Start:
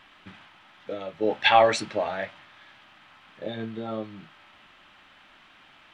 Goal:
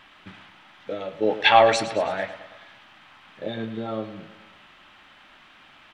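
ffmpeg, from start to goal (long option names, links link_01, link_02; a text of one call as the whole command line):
ffmpeg -i in.wav -af "aecho=1:1:108|216|324|432|540:0.211|0.114|0.0616|0.0333|0.018,volume=2.5dB" out.wav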